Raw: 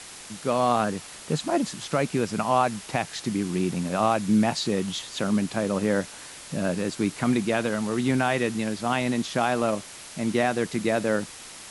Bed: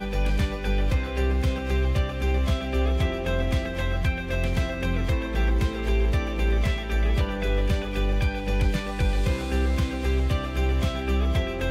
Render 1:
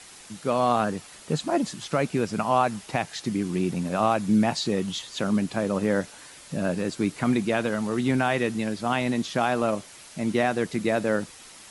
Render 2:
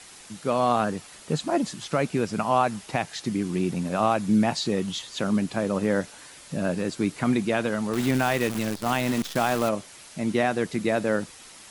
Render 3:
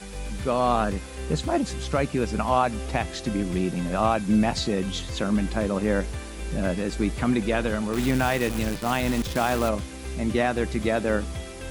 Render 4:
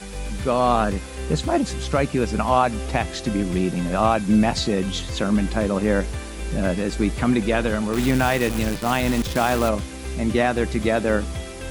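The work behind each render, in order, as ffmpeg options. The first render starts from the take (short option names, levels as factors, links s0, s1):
-af "afftdn=nr=6:nf=-43"
-filter_complex "[0:a]asettb=1/sr,asplit=3[s0][s1][s2];[s0]atrim=end=7.934[s3];[s1]atrim=start=7.93:end=9.69,asetpts=PTS-STARTPTS,afade=t=in:d=0.004:c=qsin,afade=t=out:st=1.756:d=0.004:c=qsin,acrusher=bits=6:dc=4:mix=0:aa=0.000001[s4];[s2]atrim=start=9.686[s5];[s3][s4]acrossfade=d=0.004:c1=hsin:c2=qsin[s6];[s6][s5]acrossfade=d=0.004:c1=qsin:c2=hsin"
-filter_complex "[1:a]volume=0.316[s0];[0:a][s0]amix=inputs=2:normalize=0"
-af "volume=1.5"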